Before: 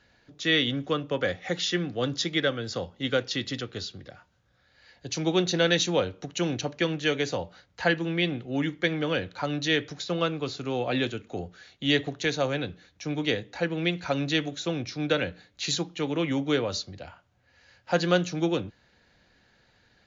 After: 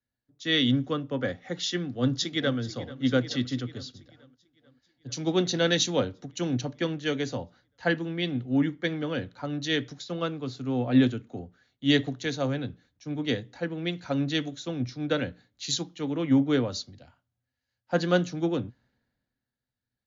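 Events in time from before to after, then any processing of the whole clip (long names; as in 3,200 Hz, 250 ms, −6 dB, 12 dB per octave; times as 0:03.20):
0:01.78–0:02.58: delay throw 440 ms, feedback 75%, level −12.5 dB
whole clip: thirty-one-band graphic EQ 125 Hz +9 dB, 250 Hz +12 dB, 2,500 Hz −5 dB; multiband upward and downward expander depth 70%; level −3.5 dB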